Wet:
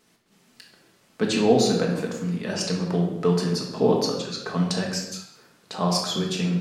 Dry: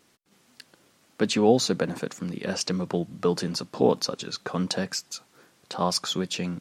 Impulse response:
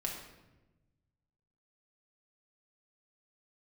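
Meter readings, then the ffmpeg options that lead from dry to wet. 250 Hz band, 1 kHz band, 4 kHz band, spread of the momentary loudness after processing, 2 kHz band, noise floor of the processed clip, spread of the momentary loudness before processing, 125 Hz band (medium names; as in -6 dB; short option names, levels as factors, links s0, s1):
+3.5 dB, +1.0 dB, +1.0 dB, 10 LU, +1.5 dB, -61 dBFS, 11 LU, +6.0 dB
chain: -filter_complex "[1:a]atrim=start_sample=2205,afade=t=out:st=0.44:d=0.01,atrim=end_sample=19845[s0];[0:a][s0]afir=irnorm=-1:irlink=0"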